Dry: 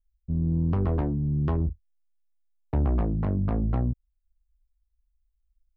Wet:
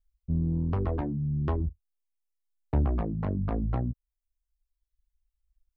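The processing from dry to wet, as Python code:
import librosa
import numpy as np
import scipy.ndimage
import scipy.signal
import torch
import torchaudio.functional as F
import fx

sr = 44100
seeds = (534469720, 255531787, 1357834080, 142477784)

y = fx.dereverb_blind(x, sr, rt60_s=1.3)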